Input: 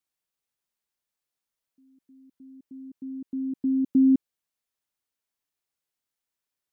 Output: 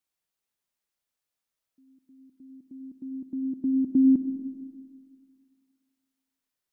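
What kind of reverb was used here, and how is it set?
comb and all-pass reverb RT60 2 s, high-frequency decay 0.75×, pre-delay 30 ms, DRR 7.5 dB

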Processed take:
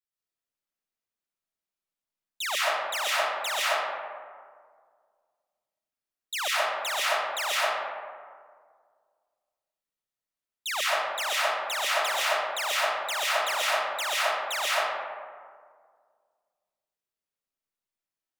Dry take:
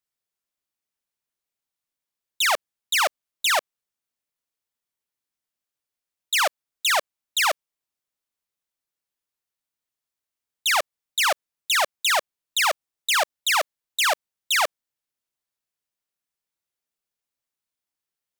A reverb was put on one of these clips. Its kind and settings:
comb and all-pass reverb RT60 1.9 s, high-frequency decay 0.4×, pre-delay 90 ms, DRR −7.5 dB
level −11 dB

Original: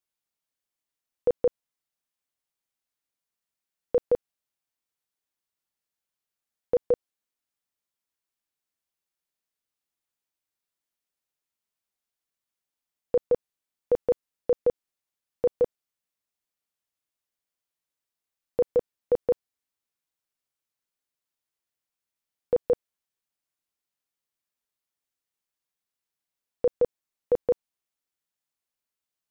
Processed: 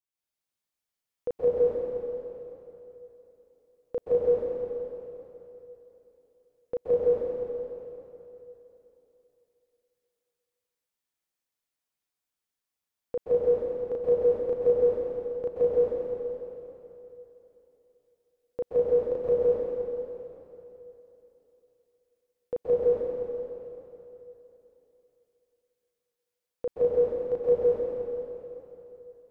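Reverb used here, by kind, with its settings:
dense smooth reverb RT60 3.2 s, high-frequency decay 0.9×, pre-delay 115 ms, DRR −8.5 dB
level −8.5 dB

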